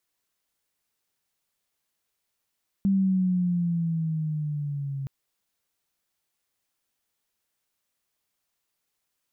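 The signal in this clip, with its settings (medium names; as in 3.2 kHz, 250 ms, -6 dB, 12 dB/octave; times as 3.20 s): gliding synth tone sine, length 2.22 s, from 197 Hz, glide -6.5 st, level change -10.5 dB, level -18.5 dB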